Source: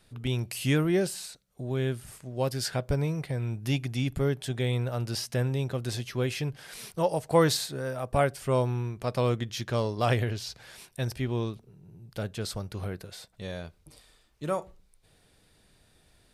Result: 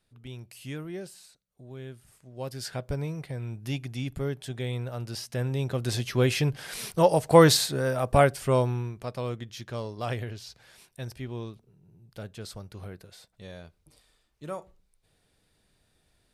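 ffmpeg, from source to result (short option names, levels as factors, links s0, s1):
-af "volume=2,afade=t=in:st=2.12:d=0.67:silence=0.375837,afade=t=in:st=5.29:d=0.98:silence=0.316228,afade=t=out:st=8.05:d=1.11:silence=0.237137"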